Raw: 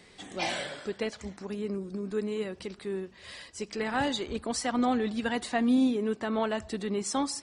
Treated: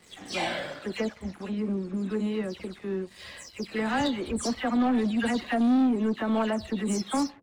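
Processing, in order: spectral delay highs early, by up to 0.168 s; dynamic EQ 230 Hz, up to +4 dB, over -41 dBFS, Q 2.4; sample leveller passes 2; high shelf 5400 Hz -5.5 dB; gain -4 dB

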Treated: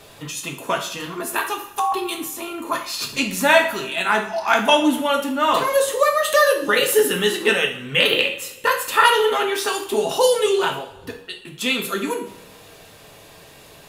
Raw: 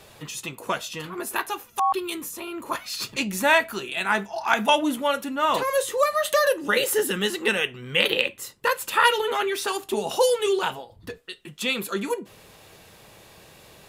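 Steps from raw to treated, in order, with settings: two-slope reverb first 0.49 s, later 1.7 s, from -18 dB, DRR 2 dB; gain +2.5 dB

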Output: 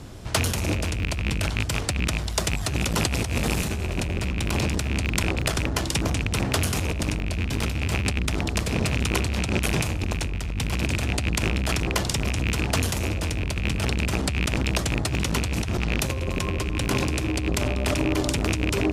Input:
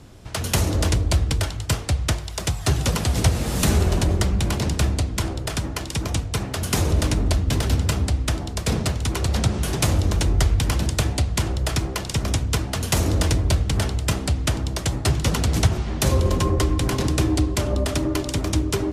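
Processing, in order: rattling part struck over -24 dBFS, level -16 dBFS; negative-ratio compressor -24 dBFS, ratio -1; core saturation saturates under 460 Hz; gain +2 dB

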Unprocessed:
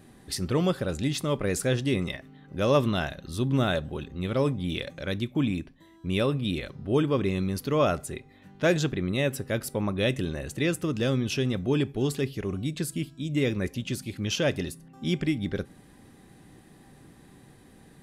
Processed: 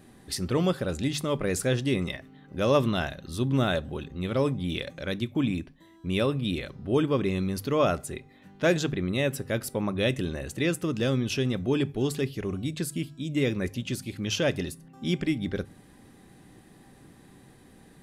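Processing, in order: notches 50/100/150 Hz

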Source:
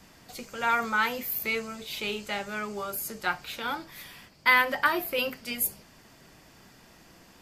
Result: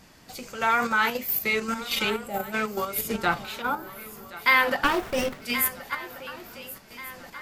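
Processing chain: 2.09–2.53 spectral gain 860–7200 Hz -17 dB; wow and flutter 60 cents; 1.61–2.05 comb 3.8 ms, depth 99%; 3.62–4.39 spectral gain 1500–9700 Hz -15 dB; on a send: swung echo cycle 1.434 s, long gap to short 3:1, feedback 45%, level -15 dB; on the sum: flange 0.7 Hz, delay 1.3 ms, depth 9.3 ms, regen -87%; 2.98–3.45 low shelf 500 Hz +8 dB; in parallel at +2.5 dB: level quantiser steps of 19 dB; 4.84–5.42 on the sum: running maximum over 9 samples; gain +4 dB

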